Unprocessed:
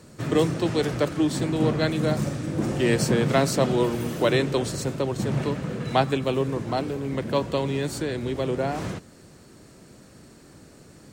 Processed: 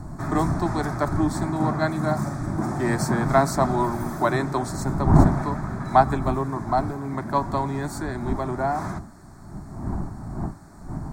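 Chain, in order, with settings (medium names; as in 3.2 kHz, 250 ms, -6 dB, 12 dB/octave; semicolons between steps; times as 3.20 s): wind noise 180 Hz -28 dBFS; peaking EQ 680 Hz +12.5 dB 2 oct; static phaser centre 1.2 kHz, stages 4; trim -1 dB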